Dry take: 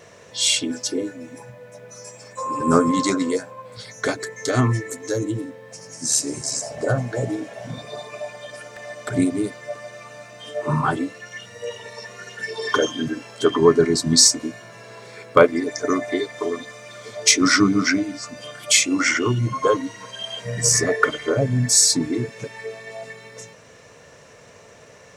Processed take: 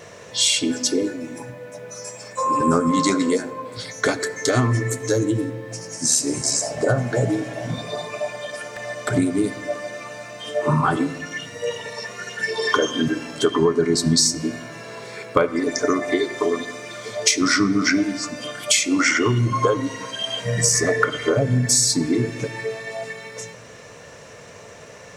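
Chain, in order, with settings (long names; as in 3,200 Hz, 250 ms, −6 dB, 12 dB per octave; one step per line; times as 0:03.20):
downward compressor 6 to 1, threshold −20 dBFS, peak gain reduction 12 dB
on a send: convolution reverb RT60 1.2 s, pre-delay 6 ms, DRR 13 dB
on the sum: level +5 dB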